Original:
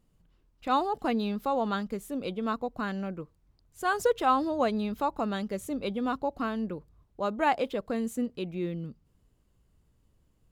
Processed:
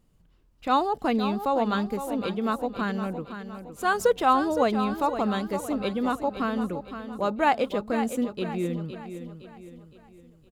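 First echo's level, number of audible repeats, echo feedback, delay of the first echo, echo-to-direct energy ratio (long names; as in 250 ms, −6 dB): −10.0 dB, 4, 44%, 513 ms, −9.0 dB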